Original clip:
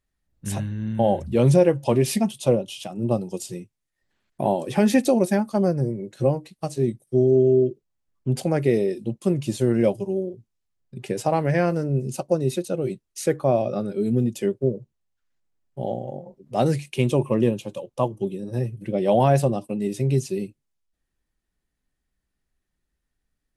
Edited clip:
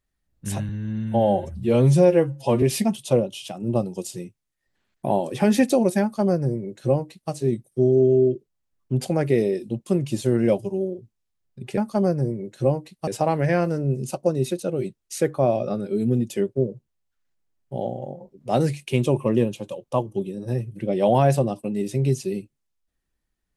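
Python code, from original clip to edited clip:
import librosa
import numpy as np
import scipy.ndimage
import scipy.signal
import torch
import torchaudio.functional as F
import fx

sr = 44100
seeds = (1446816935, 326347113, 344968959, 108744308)

y = fx.edit(x, sr, fx.stretch_span(start_s=0.69, length_s=1.29, factor=1.5),
    fx.duplicate(start_s=5.37, length_s=1.3, to_s=11.13), tone=tone)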